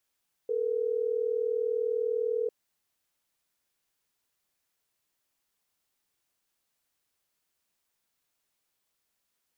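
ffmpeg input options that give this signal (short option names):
-f lavfi -i "aevalsrc='0.0355*(sin(2*PI*440*t)+sin(2*PI*480*t))*clip(min(mod(t,6),2-mod(t,6))/0.005,0,1)':d=3.12:s=44100"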